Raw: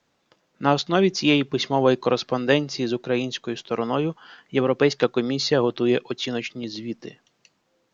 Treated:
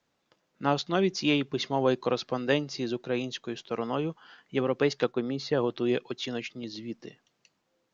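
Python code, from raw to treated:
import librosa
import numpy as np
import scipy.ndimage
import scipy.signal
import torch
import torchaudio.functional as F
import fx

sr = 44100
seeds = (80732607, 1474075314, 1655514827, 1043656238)

y = fx.high_shelf(x, sr, hz=fx.line((5.11, 2600.0), (5.56, 3800.0)), db=-11.5, at=(5.11, 5.56), fade=0.02)
y = F.gain(torch.from_numpy(y), -6.5).numpy()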